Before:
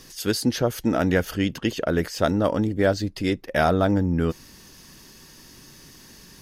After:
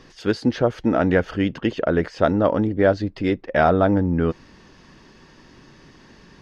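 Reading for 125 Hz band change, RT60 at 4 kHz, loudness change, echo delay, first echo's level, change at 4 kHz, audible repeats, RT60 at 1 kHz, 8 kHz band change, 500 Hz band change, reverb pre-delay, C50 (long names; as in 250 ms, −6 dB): +1.0 dB, no reverb audible, +2.5 dB, no echo audible, no echo audible, −5.0 dB, no echo audible, no reverb audible, below −10 dB, +4.0 dB, no reverb audible, no reverb audible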